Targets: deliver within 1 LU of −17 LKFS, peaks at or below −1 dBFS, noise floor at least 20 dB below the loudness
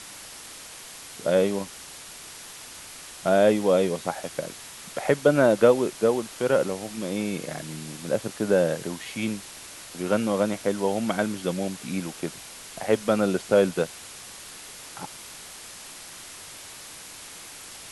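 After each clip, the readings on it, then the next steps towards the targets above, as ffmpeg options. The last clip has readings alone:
background noise floor −43 dBFS; target noise floor −45 dBFS; integrated loudness −25.0 LKFS; sample peak −6.0 dBFS; target loudness −17.0 LKFS
→ -af "afftdn=noise_reduction=6:noise_floor=-43"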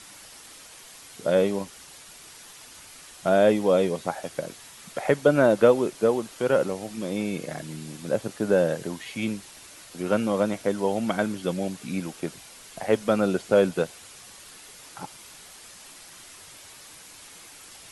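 background noise floor −47 dBFS; integrated loudness −25.0 LKFS; sample peak −6.0 dBFS; target loudness −17.0 LKFS
→ -af "volume=8dB,alimiter=limit=-1dB:level=0:latency=1"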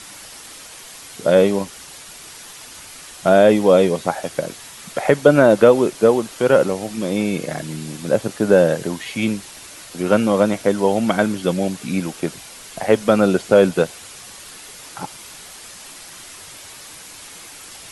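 integrated loudness −17.5 LKFS; sample peak −1.0 dBFS; background noise floor −39 dBFS

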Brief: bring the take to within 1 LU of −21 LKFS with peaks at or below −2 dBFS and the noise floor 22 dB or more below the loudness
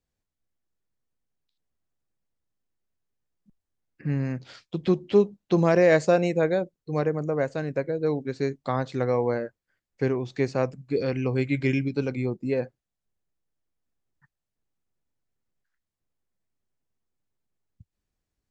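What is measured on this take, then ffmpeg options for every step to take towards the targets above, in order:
integrated loudness −25.5 LKFS; sample peak −7.5 dBFS; target loudness −21.0 LKFS
→ -af "volume=4.5dB"

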